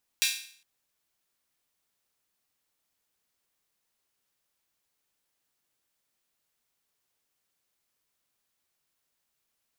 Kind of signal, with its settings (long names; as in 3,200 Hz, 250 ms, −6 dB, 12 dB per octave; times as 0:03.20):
open synth hi-hat length 0.41 s, high-pass 2,700 Hz, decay 0.53 s